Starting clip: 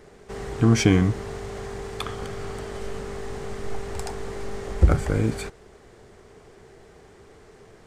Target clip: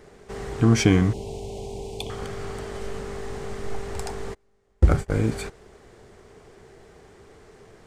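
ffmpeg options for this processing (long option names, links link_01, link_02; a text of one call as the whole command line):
ffmpeg -i in.wav -filter_complex "[0:a]asettb=1/sr,asplit=3[link_01][link_02][link_03];[link_01]atrim=end=1.134[link_04];[link_02]atrim=start=1.13:end=2.1,asetpts=PTS-STARTPTS,afade=type=in:duration=0.004:curve=qsin,afade=type=out:start_time=0.966:duration=0.004:curve=qsin,asuperstop=centerf=1500:order=8:qfactor=0.94[link_05];[link_03]atrim=start=2.096[link_06];[link_04][link_05]acrossfade=duration=0.004:curve1=hsin:curve2=qsin[link_07];[link_07][link_06]acrossfade=duration=0.004:curve1=qsin:curve2=hsin,asplit=3[link_08][link_09][link_10];[link_08]afade=type=out:start_time=4.33:duration=0.02[link_11];[link_09]agate=range=-34dB:threshold=-23dB:ratio=16:detection=peak,afade=type=in:start_time=4.33:duration=0.02,afade=type=out:start_time=5.16:duration=0.02[link_12];[link_10]afade=type=in:start_time=5.16:duration=0.02[link_13];[link_11][link_12][link_13]amix=inputs=3:normalize=0" out.wav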